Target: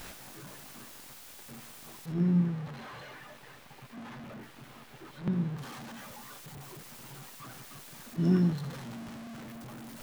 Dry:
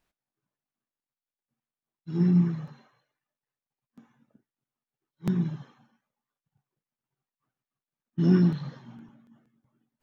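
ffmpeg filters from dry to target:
-filter_complex "[0:a]aeval=exprs='val(0)+0.5*0.0211*sgn(val(0))':c=same,asettb=1/sr,asplit=3[a][b][c];[a]atrim=end=2.124[d];[b]atrim=start=2.12:end=5.58,asetpts=PTS-STARTPTS,afade=t=in:d=0.004:c=qsin,afade=t=out:st=3.456:d=0.004:c=qsin,acrossover=split=3700[e][f];[f]acompressor=threshold=-56dB:ratio=4:attack=1:release=60[g];[e][g]amix=inputs=2:normalize=0[h];[c]atrim=start=5.576[i];[d][h]acrossfade=d=0.004:c1=hsin:c2=qsin[j];[j][i]acrossfade=d=0.004:c1=qsin:c2=hsin,volume=-5dB"

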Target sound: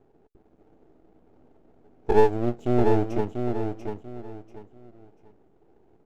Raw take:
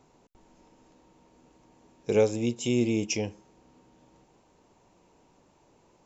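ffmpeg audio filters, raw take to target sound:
-af "firequalizer=gain_entry='entry(210,0);entry(430,9);entry(670,-26);entry(1100,-12);entry(5200,-25)':delay=0.05:min_phase=1,aeval=exprs='max(val(0),0)':c=same,aecho=1:1:690|1380|2070:0.501|0.135|0.0365,volume=3dB"

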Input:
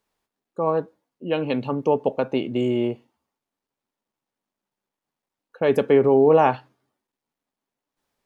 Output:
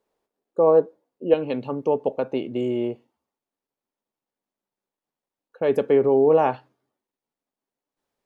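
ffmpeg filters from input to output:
-af "asetnsamples=n=441:p=0,asendcmd='1.34 equalizer g 5',equalizer=f=470:w=0.81:g=14,volume=-6dB"

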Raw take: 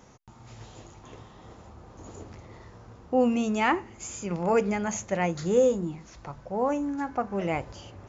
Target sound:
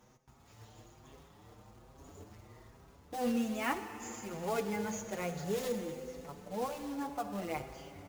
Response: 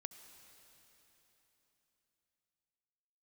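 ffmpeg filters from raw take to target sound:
-filter_complex "[0:a]bandreject=f=169.3:t=h:w=4,bandreject=f=338.6:t=h:w=4,bandreject=f=507.9:t=h:w=4,bandreject=f=677.2:t=h:w=4,bandreject=f=846.5:t=h:w=4,acrusher=bits=3:mode=log:mix=0:aa=0.000001[a];[1:a]atrim=start_sample=2205[b];[a][b]afir=irnorm=-1:irlink=0,asplit=2[c][d];[d]adelay=6.1,afreqshift=1.2[e];[c][e]amix=inputs=2:normalize=1,volume=-2dB"

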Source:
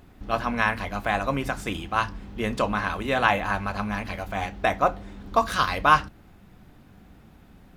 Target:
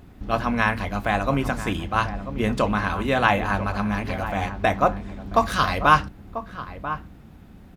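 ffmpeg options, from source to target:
-filter_complex "[0:a]equalizer=f=110:w=0.31:g=5,asplit=2[a][b];[b]adelay=991.3,volume=-11dB,highshelf=f=4k:g=-22.3[c];[a][c]amix=inputs=2:normalize=0,volume=1dB"

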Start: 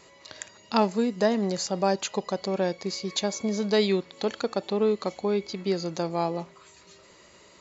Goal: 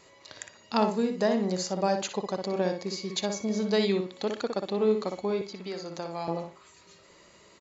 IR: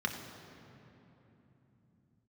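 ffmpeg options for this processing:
-filter_complex "[0:a]asplit=2[a][b];[b]adelay=60,lowpass=f=2.5k:p=1,volume=-5dB,asplit=2[c][d];[d]adelay=60,lowpass=f=2.5k:p=1,volume=0.25,asplit=2[e][f];[f]adelay=60,lowpass=f=2.5k:p=1,volume=0.25[g];[a][c][e][g]amix=inputs=4:normalize=0,asettb=1/sr,asplit=3[h][i][j];[h]atrim=end=5.414[k];[i]atrim=start=5.41:end=6.28,asetpts=PTS-STARTPTS,afade=t=in:d=0.004:c=qsin,afade=t=out:st=0.866:d=0.004:c=qsin,acrossover=split=550|1900[l][m][n];[l]acompressor=threshold=-37dB:ratio=4[o];[m]acompressor=threshold=-32dB:ratio=4[p];[n]acompressor=threshold=-40dB:ratio=4[q];[o][p][q]amix=inputs=3:normalize=0[r];[j]atrim=start=6.276[s];[k][r]acrossfade=d=0.004:c1=hsin:c2=qsin[t];[t][s]acrossfade=d=0.004:c1=qsin:c2=hsin,volume=-3dB"

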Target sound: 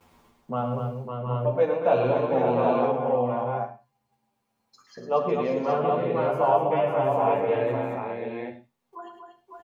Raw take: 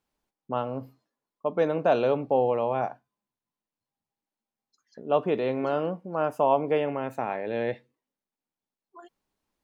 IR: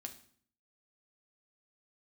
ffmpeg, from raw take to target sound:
-filter_complex "[0:a]equalizer=f=1.8k:t=o:w=0.62:g=-6.5,acompressor=mode=upward:threshold=-33dB:ratio=2.5,equalizer=f=125:t=o:w=1:g=11,equalizer=f=500:t=o:w=1:g=6,equalizer=f=1k:t=o:w=1:g=7,equalizer=f=2k:t=o:w=1:g=9,agate=range=-19dB:threshold=-49dB:ratio=16:detection=peak,aecho=1:1:108|238|553|714|771:0.376|0.473|0.501|0.447|0.631[a];[1:a]atrim=start_sample=2205,atrim=end_sample=6615[b];[a][b]afir=irnorm=-1:irlink=0,asplit=2[c][d];[d]adelay=9,afreqshift=-0.36[e];[c][e]amix=inputs=2:normalize=1"

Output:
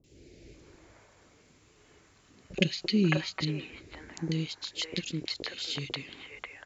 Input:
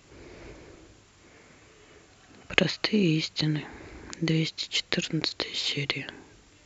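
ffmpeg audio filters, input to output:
-filter_complex "[0:a]asettb=1/sr,asplit=3[a][b][c];[a]atrim=end=2.534[d];[b]atrim=start=2.53:end=3.17,asetpts=PTS-STARTPTS,afade=t=in:d=0.004:c=qsin,afade=t=out:st=0.636:d=0.004:c=qsin,aecho=1:1:5.3:0.85,atrim=end_sample=28224[e];[c]atrim=start=3.166[f];[d][e]acrossfade=d=0.004:c1=hsin:c2=qsin[g];[g][f]acrossfade=d=0.004:c1=qsin:c2=hsin,acrossover=split=550|2200[h][i][j];[j]adelay=40[k];[i]adelay=540[l];[h][l][k]amix=inputs=3:normalize=0,volume=-5dB"

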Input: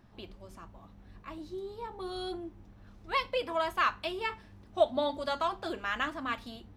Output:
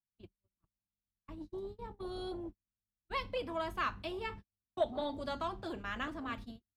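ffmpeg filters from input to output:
-filter_complex "[0:a]agate=range=-50dB:threshold=-42dB:ratio=16:detection=peak,acrossover=split=310[a][b];[a]aeval=exprs='0.02*sin(PI/2*2.82*val(0)/0.02)':c=same[c];[c][b]amix=inputs=2:normalize=0,volume=-7.5dB"

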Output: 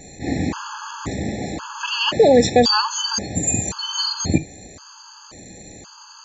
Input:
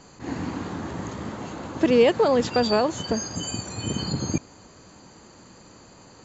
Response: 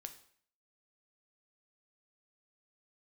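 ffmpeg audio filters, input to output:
-filter_complex "[0:a]highshelf=f=2.7k:g=8,asplit=2[a][b];[1:a]atrim=start_sample=2205,atrim=end_sample=3528,lowshelf=f=92:g=8.5[c];[b][c]afir=irnorm=-1:irlink=0,volume=4.5dB[d];[a][d]amix=inputs=2:normalize=0,afftfilt=real='re*gt(sin(2*PI*0.94*pts/sr)*(1-2*mod(floor(b*sr/1024/860),2)),0)':imag='im*gt(sin(2*PI*0.94*pts/sr)*(1-2*mod(floor(b*sr/1024/860),2)),0)':win_size=1024:overlap=0.75,volume=2dB"

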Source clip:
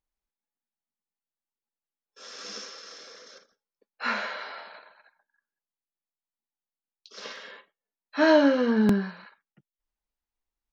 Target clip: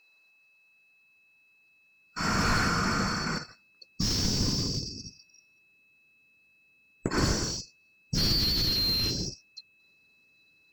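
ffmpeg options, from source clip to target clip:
-filter_complex "[0:a]afftfilt=real='real(if(lt(b,736),b+184*(1-2*mod(floor(b/184),2)),b),0)':imag='imag(if(lt(b,736),b+184*(1-2*mod(floor(b/184),2)),b),0)':win_size=2048:overlap=0.75,highshelf=f=2.3k:g=-9.5,acrossover=split=1500[a][b];[a]alimiter=level_in=16.5dB:limit=-24dB:level=0:latency=1,volume=-16.5dB[c];[b]aexciter=amount=1.6:drive=8:freq=4.4k[d];[c][d]amix=inputs=2:normalize=0,asplit=2[e][f];[f]highpass=f=720:p=1,volume=36dB,asoftclip=type=tanh:threshold=-10.5dB[g];[e][g]amix=inputs=2:normalize=0,lowpass=f=1.1k:p=1,volume=-6dB,aeval=exprs='val(0)+0.000891*sin(2*PI*2600*n/s)':c=same,asubboost=boost=10.5:cutoff=230"

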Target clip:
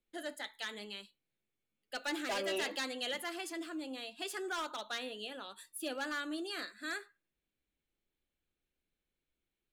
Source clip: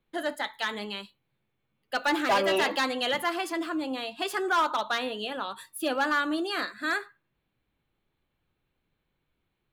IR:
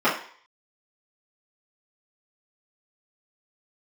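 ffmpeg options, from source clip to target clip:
-af "equalizer=f=125:t=o:w=1:g=-11,equalizer=f=1k:t=o:w=1:g=-9,equalizer=f=8k:t=o:w=1:g=6,volume=-8.5dB"

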